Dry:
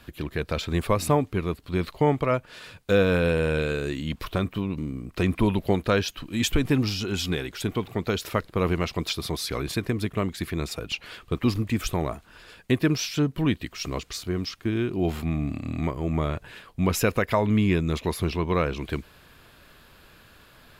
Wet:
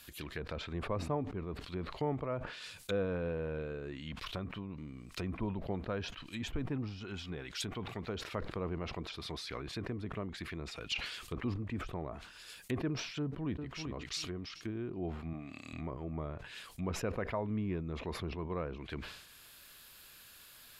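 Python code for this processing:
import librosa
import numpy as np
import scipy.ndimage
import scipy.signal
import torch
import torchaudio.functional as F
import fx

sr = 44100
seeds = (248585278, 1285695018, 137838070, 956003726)

y = fx.peak_eq(x, sr, hz=380.0, db=-2.5, octaves=1.2, at=(3.91, 8.09))
y = fx.echo_throw(y, sr, start_s=13.19, length_s=0.67, ms=390, feedback_pct=15, wet_db=-6.5)
y = fx.highpass(y, sr, hz=340.0, slope=6, at=(15.33, 15.73))
y = fx.env_lowpass_down(y, sr, base_hz=870.0, full_db=-23.5)
y = scipy.signal.lfilter([1.0, -0.9], [1.0], y)
y = fx.sustainer(y, sr, db_per_s=62.0)
y = F.gain(torch.from_numpy(y), 5.5).numpy()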